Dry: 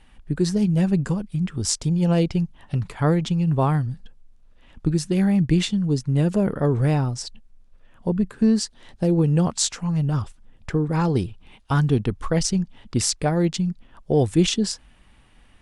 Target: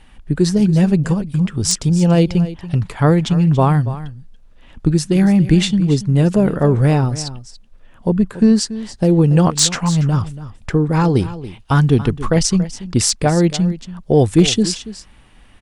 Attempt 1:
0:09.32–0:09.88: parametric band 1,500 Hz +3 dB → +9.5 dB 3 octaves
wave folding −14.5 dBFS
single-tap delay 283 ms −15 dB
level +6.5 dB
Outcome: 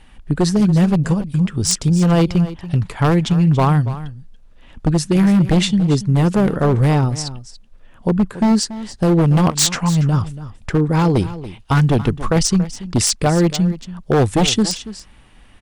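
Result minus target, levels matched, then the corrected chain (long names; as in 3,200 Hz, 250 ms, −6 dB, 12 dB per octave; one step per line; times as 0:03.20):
wave folding: distortion +25 dB
0:09.32–0:09.88: parametric band 1,500 Hz +3 dB → +9.5 dB 3 octaves
wave folding −8.5 dBFS
single-tap delay 283 ms −15 dB
level +6.5 dB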